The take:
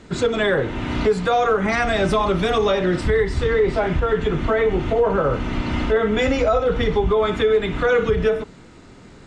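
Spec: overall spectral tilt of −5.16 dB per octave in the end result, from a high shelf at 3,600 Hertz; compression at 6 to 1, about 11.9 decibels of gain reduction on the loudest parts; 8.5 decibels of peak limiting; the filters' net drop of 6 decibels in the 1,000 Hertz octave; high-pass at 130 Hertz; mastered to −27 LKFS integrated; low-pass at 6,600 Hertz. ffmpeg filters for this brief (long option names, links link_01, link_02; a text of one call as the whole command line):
ffmpeg -i in.wav -af "highpass=130,lowpass=6600,equalizer=frequency=1000:width_type=o:gain=-8.5,highshelf=frequency=3600:gain=-6.5,acompressor=threshold=-29dB:ratio=6,volume=8dB,alimiter=limit=-19.5dB:level=0:latency=1" out.wav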